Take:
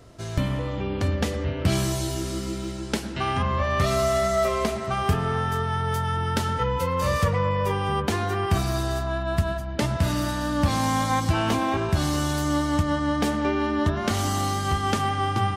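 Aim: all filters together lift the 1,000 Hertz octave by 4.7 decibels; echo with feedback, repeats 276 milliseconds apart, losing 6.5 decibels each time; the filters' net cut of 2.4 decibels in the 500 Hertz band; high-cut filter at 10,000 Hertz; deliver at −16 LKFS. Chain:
low-pass filter 10,000 Hz
parametric band 500 Hz −6.5 dB
parametric band 1,000 Hz +7.5 dB
repeating echo 276 ms, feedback 47%, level −6.5 dB
level +6.5 dB

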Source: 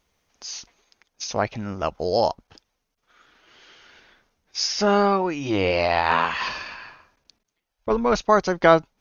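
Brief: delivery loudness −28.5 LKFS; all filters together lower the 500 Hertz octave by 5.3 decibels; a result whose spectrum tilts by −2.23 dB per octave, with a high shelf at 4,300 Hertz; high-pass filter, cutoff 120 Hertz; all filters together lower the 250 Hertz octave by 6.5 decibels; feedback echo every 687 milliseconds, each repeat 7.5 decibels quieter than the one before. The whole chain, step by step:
high-pass filter 120 Hz
parametric band 250 Hz −7 dB
parametric band 500 Hz −5.5 dB
high-shelf EQ 4,300 Hz +6.5 dB
repeating echo 687 ms, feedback 42%, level −7.5 dB
level −4 dB

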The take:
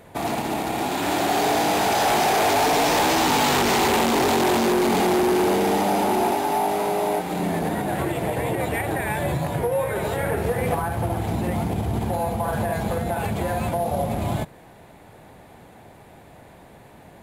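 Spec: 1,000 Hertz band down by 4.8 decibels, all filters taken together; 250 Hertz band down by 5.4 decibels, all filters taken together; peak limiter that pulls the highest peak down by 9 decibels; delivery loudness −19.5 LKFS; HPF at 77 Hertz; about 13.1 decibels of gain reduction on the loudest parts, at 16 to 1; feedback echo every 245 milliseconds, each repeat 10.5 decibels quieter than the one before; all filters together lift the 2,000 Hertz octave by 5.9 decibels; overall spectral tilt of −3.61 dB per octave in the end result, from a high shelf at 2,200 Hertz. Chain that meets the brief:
high-pass filter 77 Hz
parametric band 250 Hz −7.5 dB
parametric band 1,000 Hz −8.5 dB
parametric band 2,000 Hz +6 dB
high-shelf EQ 2,200 Hz +6.5 dB
downward compressor 16 to 1, threshold −28 dBFS
brickwall limiter −27 dBFS
repeating echo 245 ms, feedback 30%, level −10.5 dB
level +15.5 dB

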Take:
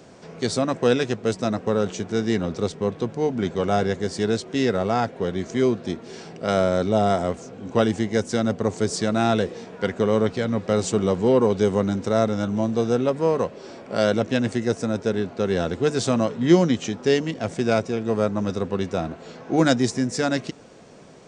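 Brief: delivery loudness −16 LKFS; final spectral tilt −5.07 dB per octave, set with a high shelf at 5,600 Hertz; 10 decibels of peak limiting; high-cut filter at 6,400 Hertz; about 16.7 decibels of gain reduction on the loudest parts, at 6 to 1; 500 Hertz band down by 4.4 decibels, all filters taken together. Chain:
low-pass filter 6,400 Hz
parametric band 500 Hz −5.5 dB
high-shelf EQ 5,600 Hz +7 dB
downward compressor 6 to 1, threshold −30 dBFS
level +21.5 dB
brickwall limiter −4.5 dBFS

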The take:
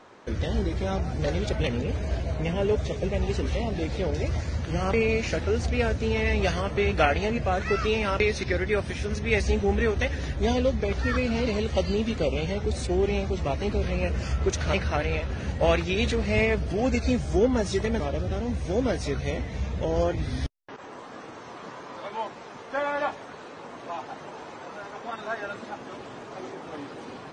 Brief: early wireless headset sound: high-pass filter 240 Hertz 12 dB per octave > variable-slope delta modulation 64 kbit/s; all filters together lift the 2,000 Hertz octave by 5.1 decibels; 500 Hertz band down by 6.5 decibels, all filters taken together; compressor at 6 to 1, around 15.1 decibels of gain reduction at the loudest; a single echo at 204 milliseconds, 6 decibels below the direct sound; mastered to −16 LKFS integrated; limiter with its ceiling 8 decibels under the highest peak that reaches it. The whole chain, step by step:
parametric band 500 Hz −8 dB
parametric band 2,000 Hz +6.5 dB
downward compressor 6 to 1, threshold −34 dBFS
brickwall limiter −28 dBFS
high-pass filter 240 Hz 12 dB per octave
single-tap delay 204 ms −6 dB
variable-slope delta modulation 64 kbit/s
level +24 dB

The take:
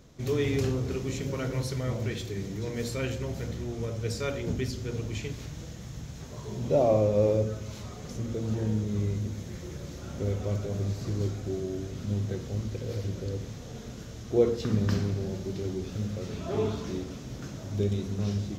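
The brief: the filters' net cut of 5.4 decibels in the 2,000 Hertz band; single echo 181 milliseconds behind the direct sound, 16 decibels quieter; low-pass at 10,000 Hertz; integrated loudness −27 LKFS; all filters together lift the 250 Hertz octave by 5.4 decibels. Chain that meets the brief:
low-pass filter 10,000 Hz
parametric band 250 Hz +7 dB
parametric band 2,000 Hz −7 dB
single-tap delay 181 ms −16 dB
level +1.5 dB

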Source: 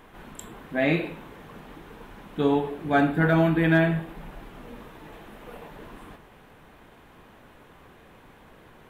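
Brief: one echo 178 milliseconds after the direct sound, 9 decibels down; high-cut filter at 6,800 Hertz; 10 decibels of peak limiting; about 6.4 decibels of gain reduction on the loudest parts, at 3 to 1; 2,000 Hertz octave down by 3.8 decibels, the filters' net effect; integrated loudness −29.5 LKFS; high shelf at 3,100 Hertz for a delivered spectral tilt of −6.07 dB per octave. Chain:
low-pass filter 6,800 Hz
parametric band 2,000 Hz −7 dB
high-shelf EQ 3,100 Hz +5.5 dB
downward compressor 3 to 1, threshold −25 dBFS
brickwall limiter −26 dBFS
single-tap delay 178 ms −9 dB
level +8 dB

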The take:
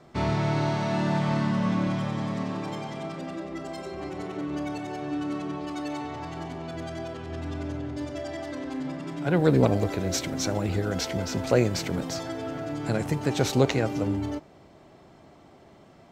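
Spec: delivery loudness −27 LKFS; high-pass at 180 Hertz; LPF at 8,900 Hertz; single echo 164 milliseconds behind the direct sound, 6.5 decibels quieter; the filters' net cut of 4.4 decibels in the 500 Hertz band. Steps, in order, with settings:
high-pass filter 180 Hz
low-pass filter 8,900 Hz
parametric band 500 Hz −5.5 dB
single-tap delay 164 ms −6.5 dB
level +4 dB

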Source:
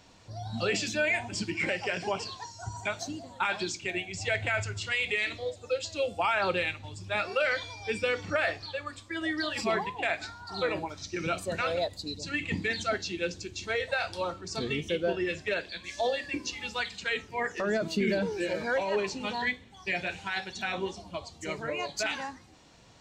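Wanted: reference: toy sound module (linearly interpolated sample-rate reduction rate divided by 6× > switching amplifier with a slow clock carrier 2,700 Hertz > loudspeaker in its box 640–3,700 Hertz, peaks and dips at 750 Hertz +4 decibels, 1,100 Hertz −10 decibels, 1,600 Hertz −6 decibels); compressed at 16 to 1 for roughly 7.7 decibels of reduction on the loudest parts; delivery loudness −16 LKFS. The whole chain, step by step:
downward compressor 16 to 1, threshold −31 dBFS
linearly interpolated sample-rate reduction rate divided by 6×
switching amplifier with a slow clock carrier 2,700 Hz
loudspeaker in its box 640–3,700 Hz, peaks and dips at 750 Hz +4 dB, 1,100 Hz −10 dB, 1,600 Hz −6 dB
level +25 dB

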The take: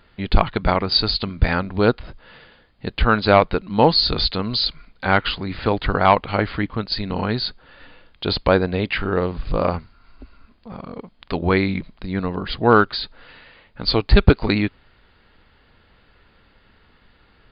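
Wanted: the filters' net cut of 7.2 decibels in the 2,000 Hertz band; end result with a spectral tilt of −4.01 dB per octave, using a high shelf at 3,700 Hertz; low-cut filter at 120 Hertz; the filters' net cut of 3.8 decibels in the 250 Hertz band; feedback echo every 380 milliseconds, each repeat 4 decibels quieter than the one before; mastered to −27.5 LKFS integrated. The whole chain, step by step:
high-pass filter 120 Hz
parametric band 250 Hz −4.5 dB
parametric band 2,000 Hz −9 dB
high-shelf EQ 3,700 Hz −6 dB
repeating echo 380 ms, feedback 63%, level −4 dB
level −5 dB

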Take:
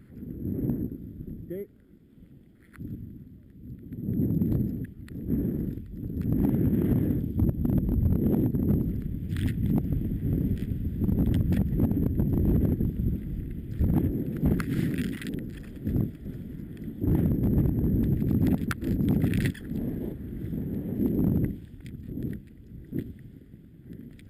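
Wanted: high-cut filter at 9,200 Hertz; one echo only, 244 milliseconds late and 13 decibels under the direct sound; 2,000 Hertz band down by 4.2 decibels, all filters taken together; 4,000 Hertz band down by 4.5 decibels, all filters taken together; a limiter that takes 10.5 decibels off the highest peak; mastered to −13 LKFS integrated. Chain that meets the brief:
low-pass filter 9,200 Hz
parametric band 2,000 Hz −4.5 dB
parametric band 4,000 Hz −4 dB
brickwall limiter −27 dBFS
single-tap delay 244 ms −13 dB
level +22.5 dB

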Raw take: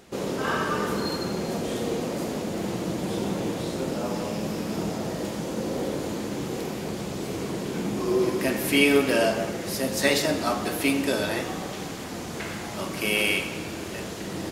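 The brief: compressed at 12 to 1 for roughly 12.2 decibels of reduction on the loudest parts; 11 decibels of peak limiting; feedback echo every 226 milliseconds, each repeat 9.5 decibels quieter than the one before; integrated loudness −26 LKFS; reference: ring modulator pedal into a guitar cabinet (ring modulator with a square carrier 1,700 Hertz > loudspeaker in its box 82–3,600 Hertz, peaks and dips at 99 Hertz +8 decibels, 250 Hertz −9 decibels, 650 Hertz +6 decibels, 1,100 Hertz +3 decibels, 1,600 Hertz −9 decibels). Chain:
downward compressor 12 to 1, threshold −27 dBFS
brickwall limiter −26.5 dBFS
repeating echo 226 ms, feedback 33%, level −9.5 dB
ring modulator with a square carrier 1,700 Hz
loudspeaker in its box 82–3,600 Hz, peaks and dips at 99 Hz +8 dB, 250 Hz −9 dB, 650 Hz +6 dB, 1,100 Hz +3 dB, 1,600 Hz −9 dB
level +10 dB

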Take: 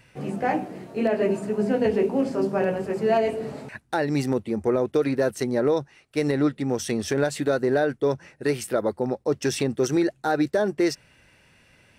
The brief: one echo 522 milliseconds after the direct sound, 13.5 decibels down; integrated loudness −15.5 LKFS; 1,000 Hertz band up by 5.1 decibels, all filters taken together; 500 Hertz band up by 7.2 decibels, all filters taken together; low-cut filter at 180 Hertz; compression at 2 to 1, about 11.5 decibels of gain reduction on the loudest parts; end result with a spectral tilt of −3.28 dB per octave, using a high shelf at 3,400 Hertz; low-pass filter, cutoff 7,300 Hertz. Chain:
high-pass filter 180 Hz
low-pass filter 7,300 Hz
parametric band 500 Hz +8.5 dB
parametric band 1,000 Hz +3.5 dB
high-shelf EQ 3,400 Hz −8.5 dB
downward compressor 2 to 1, threshold −33 dBFS
single-tap delay 522 ms −13.5 dB
level +14 dB

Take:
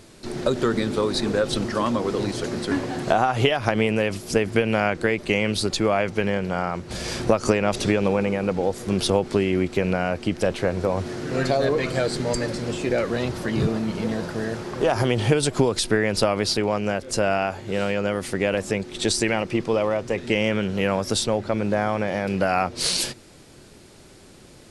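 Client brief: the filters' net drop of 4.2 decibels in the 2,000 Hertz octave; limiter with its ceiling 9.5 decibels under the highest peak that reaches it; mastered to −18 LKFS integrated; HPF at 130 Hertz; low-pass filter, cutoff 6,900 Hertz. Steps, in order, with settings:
high-pass filter 130 Hz
low-pass filter 6,900 Hz
parametric band 2,000 Hz −5.5 dB
level +8.5 dB
brickwall limiter −6 dBFS

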